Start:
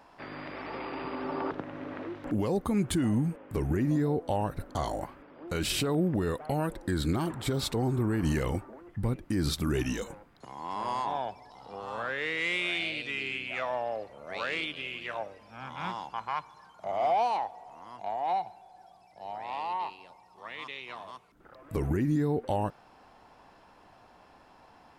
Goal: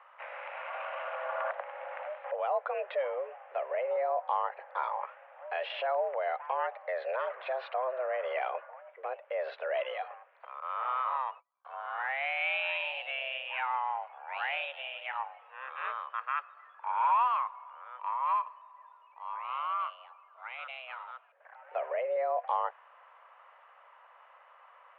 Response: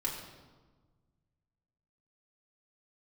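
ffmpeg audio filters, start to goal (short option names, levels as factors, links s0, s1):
-filter_complex "[0:a]asettb=1/sr,asplit=3[s0][s1][s2];[s0]atrim=end=10.604[s3];[s1]atrim=start=10.6:end=11.65,asetpts=PTS-STARTPTS,afade=t=in:d=0.004:c=qsin,afade=t=out:st=1.046:d=0.004:c=qsin,agate=range=0.0178:threshold=0.00708:ratio=16:detection=peak[s4];[s2]atrim=start=11.646[s5];[s3][s4]acrossfade=d=0.004:c1=hsin:c2=qsin[s6];[s6][s5]acrossfade=d=0.004:c1=qsin:c2=hsin,highpass=f=290:t=q:w=0.5412,highpass=f=290:t=q:w=1.307,lowpass=f=2600:t=q:w=0.5176,lowpass=f=2600:t=q:w=0.7071,lowpass=f=2600:t=q:w=1.932,afreqshift=260"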